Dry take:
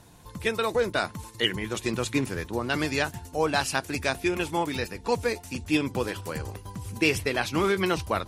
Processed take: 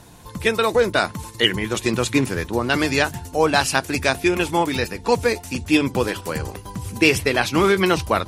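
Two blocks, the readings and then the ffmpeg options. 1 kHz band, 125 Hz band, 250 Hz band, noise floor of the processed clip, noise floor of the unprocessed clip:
+7.5 dB, +6.5 dB, +7.5 dB, -40 dBFS, -47 dBFS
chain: -af "bandreject=f=50:t=h:w=6,bandreject=f=100:t=h:w=6,bandreject=f=150:t=h:w=6,volume=2.37"

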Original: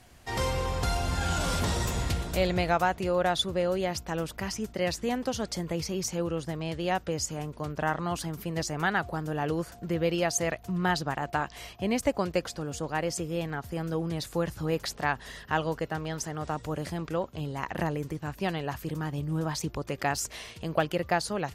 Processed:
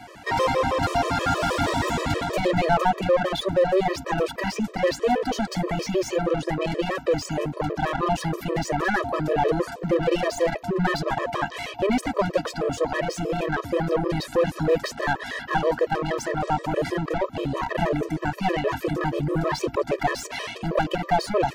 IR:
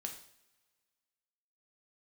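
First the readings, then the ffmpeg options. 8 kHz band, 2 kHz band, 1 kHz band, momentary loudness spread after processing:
-2.5 dB, +5.0 dB, +7.0 dB, 5 LU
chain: -filter_complex "[0:a]tremolo=f=200:d=0.824,asplit=2[s0][s1];[s1]highpass=f=720:p=1,volume=31.6,asoftclip=type=tanh:threshold=0.282[s2];[s0][s2]amix=inputs=2:normalize=0,lowpass=f=1100:p=1,volume=0.501,afftfilt=real='re*gt(sin(2*PI*6.3*pts/sr)*(1-2*mod(floor(b*sr/1024/330),2)),0)':imag='im*gt(sin(2*PI*6.3*pts/sr)*(1-2*mod(floor(b*sr/1024/330),2)),0)':win_size=1024:overlap=0.75,volume=1.5"

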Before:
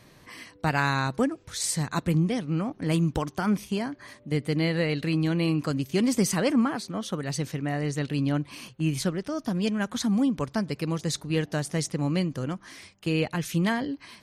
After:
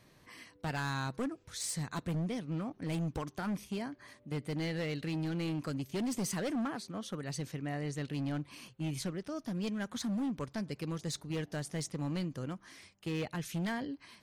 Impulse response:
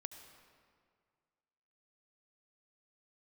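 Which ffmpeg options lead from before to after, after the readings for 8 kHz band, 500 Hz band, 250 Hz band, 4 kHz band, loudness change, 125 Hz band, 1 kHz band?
-9.0 dB, -10.5 dB, -10.0 dB, -9.5 dB, -10.0 dB, -9.5 dB, -10.5 dB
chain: -af "asoftclip=type=hard:threshold=0.075,volume=0.376"

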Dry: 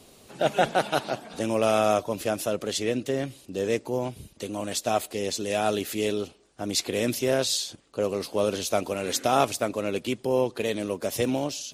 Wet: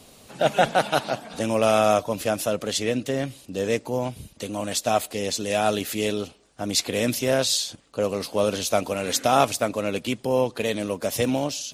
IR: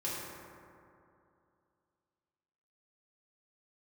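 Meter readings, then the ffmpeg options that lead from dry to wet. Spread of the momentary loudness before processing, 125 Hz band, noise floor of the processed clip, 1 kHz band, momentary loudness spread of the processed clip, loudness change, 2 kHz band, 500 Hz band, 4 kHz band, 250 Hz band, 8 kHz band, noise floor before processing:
8 LU, +3.5 dB, -53 dBFS, +3.5 dB, 9 LU, +3.0 dB, +3.5 dB, +2.5 dB, +3.5 dB, +2.0 dB, +3.5 dB, -55 dBFS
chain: -af "equalizer=f=370:w=4.1:g=-7,volume=1.5"

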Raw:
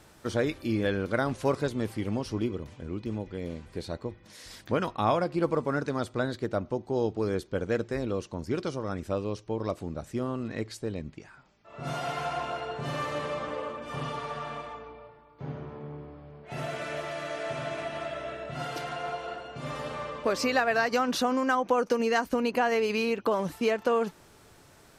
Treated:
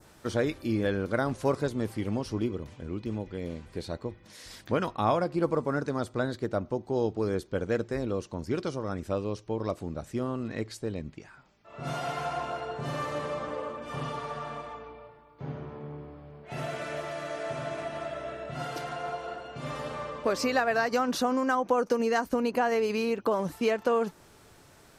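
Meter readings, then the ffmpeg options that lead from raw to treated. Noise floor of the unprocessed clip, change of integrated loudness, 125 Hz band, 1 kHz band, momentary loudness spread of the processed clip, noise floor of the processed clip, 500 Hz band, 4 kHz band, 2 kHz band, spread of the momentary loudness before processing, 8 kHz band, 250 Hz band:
-56 dBFS, -0.5 dB, 0.0 dB, -0.5 dB, 13 LU, -56 dBFS, 0.0 dB, -2.5 dB, -2.0 dB, 14 LU, -0.5 dB, 0.0 dB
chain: -af "adynamicequalizer=threshold=0.00447:dfrequency=2800:dqfactor=0.98:tfrequency=2800:tqfactor=0.98:attack=5:release=100:ratio=0.375:range=2.5:mode=cutabove:tftype=bell"

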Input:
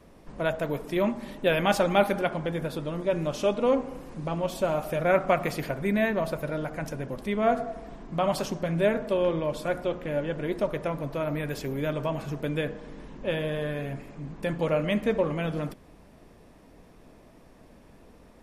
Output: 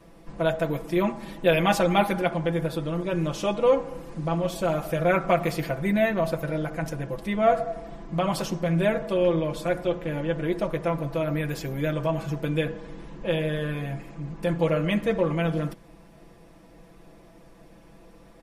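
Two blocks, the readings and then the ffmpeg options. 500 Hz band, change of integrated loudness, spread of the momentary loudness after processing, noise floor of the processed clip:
+1.5 dB, +2.0 dB, 10 LU, -51 dBFS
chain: -af "aecho=1:1:6:0.78"

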